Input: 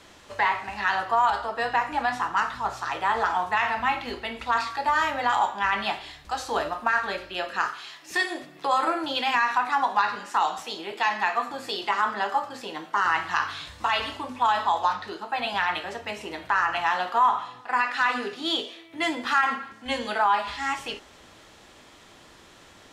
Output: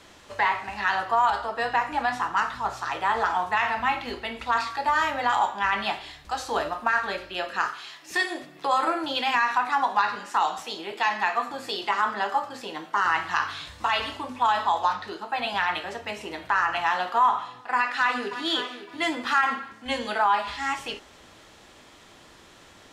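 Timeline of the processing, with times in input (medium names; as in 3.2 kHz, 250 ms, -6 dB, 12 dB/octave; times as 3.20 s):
17.75–18.47 s: echo throw 560 ms, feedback 20%, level -11.5 dB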